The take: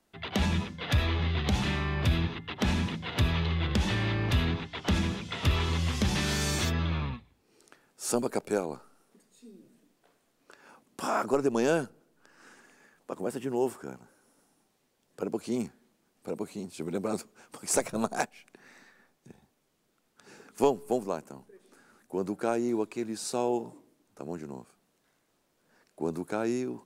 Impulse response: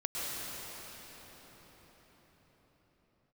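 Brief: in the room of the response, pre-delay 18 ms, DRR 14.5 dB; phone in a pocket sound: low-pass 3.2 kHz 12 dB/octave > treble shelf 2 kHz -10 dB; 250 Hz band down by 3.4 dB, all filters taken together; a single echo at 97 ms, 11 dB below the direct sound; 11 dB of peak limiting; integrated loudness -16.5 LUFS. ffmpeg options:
-filter_complex "[0:a]equalizer=f=250:t=o:g=-4.5,alimiter=limit=0.0794:level=0:latency=1,aecho=1:1:97:0.282,asplit=2[s0][s1];[1:a]atrim=start_sample=2205,adelay=18[s2];[s1][s2]afir=irnorm=-1:irlink=0,volume=0.0944[s3];[s0][s3]amix=inputs=2:normalize=0,lowpass=3200,highshelf=f=2000:g=-10,volume=7.94"

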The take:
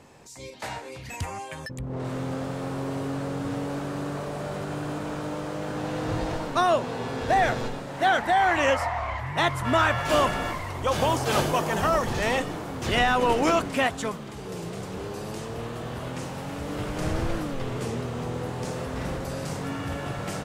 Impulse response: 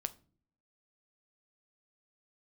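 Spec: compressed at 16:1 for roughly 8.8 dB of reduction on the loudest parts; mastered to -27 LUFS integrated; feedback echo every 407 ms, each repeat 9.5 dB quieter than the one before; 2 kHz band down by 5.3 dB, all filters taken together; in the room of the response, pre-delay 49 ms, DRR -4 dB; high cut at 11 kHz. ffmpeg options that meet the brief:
-filter_complex "[0:a]lowpass=11000,equalizer=f=2000:t=o:g=-7,acompressor=threshold=0.0447:ratio=16,aecho=1:1:407|814|1221|1628:0.335|0.111|0.0365|0.012,asplit=2[s0][s1];[1:a]atrim=start_sample=2205,adelay=49[s2];[s1][s2]afir=irnorm=-1:irlink=0,volume=1.68[s3];[s0][s3]amix=inputs=2:normalize=0"

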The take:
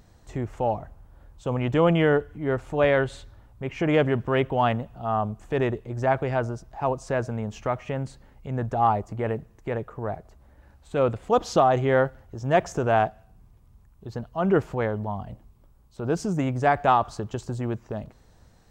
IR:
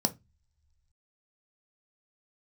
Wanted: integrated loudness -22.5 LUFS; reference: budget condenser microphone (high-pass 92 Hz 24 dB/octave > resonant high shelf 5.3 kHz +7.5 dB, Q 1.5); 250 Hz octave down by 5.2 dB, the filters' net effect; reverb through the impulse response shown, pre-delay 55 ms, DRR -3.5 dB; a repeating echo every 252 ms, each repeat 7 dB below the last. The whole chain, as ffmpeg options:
-filter_complex "[0:a]equalizer=f=250:t=o:g=-7.5,aecho=1:1:252|504|756|1008|1260:0.447|0.201|0.0905|0.0407|0.0183,asplit=2[s0][s1];[1:a]atrim=start_sample=2205,adelay=55[s2];[s1][s2]afir=irnorm=-1:irlink=0,volume=0.708[s3];[s0][s3]amix=inputs=2:normalize=0,highpass=f=92:w=0.5412,highpass=f=92:w=1.3066,highshelf=f=5300:t=q:w=1.5:g=7.5,volume=0.596"

